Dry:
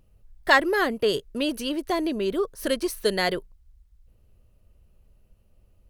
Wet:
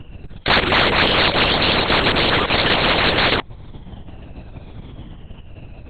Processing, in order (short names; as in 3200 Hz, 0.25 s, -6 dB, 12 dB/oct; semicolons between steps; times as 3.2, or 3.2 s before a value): moving spectral ripple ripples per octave 1.5, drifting -0.74 Hz, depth 13 dB; high shelf 2800 Hz +6 dB; sample leveller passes 2; in parallel at +1 dB: limiter -12.5 dBFS, peak gain reduction 10.5 dB; on the sum: echoes that change speed 0.311 s, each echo +3 st, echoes 3; LPC vocoder at 8 kHz whisper; spectral compressor 4:1; gain -8 dB